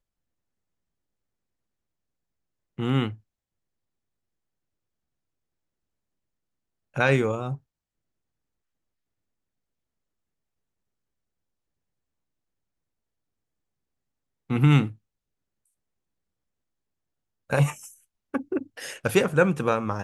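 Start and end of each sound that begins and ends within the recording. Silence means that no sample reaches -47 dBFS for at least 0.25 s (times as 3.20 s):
2.78–3.16 s
6.94–7.58 s
14.50–14.95 s
17.50–17.96 s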